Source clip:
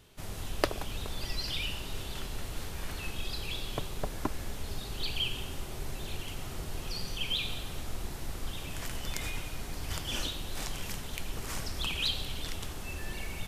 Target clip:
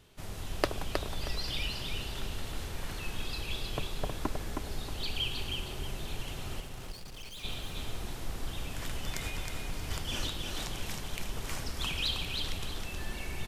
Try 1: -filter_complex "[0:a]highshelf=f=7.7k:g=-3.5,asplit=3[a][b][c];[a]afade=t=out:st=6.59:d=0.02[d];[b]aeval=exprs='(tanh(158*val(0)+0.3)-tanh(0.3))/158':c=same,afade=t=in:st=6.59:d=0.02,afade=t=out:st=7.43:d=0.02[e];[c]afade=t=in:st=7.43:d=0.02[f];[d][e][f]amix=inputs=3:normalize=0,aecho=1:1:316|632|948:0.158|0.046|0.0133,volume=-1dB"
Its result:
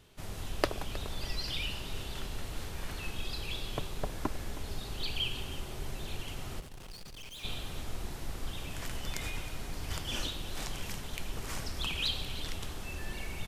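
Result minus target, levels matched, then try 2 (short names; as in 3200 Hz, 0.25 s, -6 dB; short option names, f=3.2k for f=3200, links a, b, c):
echo-to-direct -11.5 dB
-filter_complex "[0:a]highshelf=f=7.7k:g=-3.5,asplit=3[a][b][c];[a]afade=t=out:st=6.59:d=0.02[d];[b]aeval=exprs='(tanh(158*val(0)+0.3)-tanh(0.3))/158':c=same,afade=t=in:st=6.59:d=0.02,afade=t=out:st=7.43:d=0.02[e];[c]afade=t=in:st=7.43:d=0.02[f];[d][e][f]amix=inputs=3:normalize=0,aecho=1:1:316|632|948|1264:0.596|0.173|0.0501|0.0145,volume=-1dB"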